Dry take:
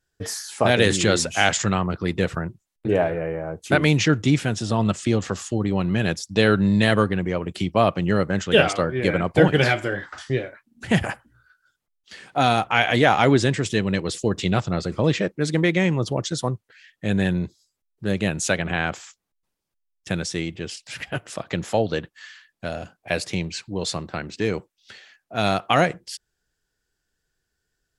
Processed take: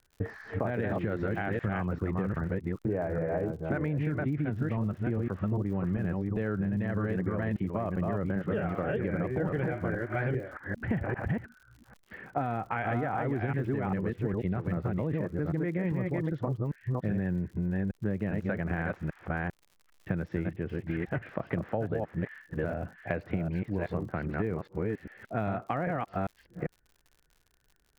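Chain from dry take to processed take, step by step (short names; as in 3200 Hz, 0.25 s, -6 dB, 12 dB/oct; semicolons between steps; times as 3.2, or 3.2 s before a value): reverse delay 0.398 s, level -3 dB; Chebyshev low-pass 1900 Hz, order 3; tilt -1.5 dB/oct; limiter -10 dBFS, peak gain reduction 10 dB; compressor 6:1, threshold -28 dBFS, peak gain reduction 13.5 dB; crackle 85/s -48 dBFS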